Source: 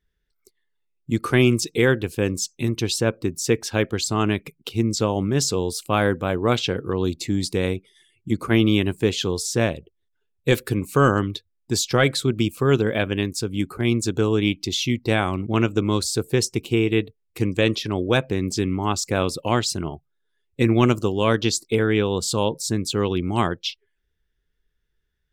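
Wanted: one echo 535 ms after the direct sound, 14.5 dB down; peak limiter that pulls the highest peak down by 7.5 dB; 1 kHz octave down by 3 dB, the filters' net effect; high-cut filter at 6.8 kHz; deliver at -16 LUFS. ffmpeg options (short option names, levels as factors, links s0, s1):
-af "lowpass=6800,equalizer=f=1000:t=o:g=-4,alimiter=limit=0.211:level=0:latency=1,aecho=1:1:535:0.188,volume=3.16"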